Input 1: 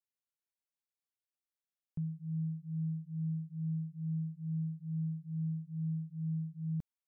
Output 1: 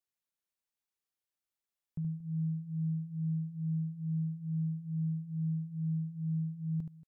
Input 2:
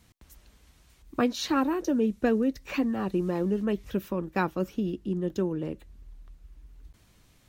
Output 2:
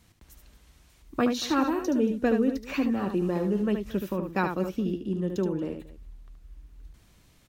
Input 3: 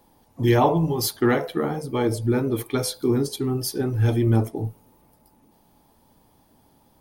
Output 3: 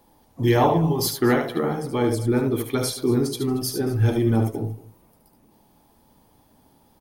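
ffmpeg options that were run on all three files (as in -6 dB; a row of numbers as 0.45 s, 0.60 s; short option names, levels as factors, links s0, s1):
-af "aecho=1:1:74|230:0.473|0.112"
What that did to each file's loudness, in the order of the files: +2.5 LU, +1.0 LU, +0.5 LU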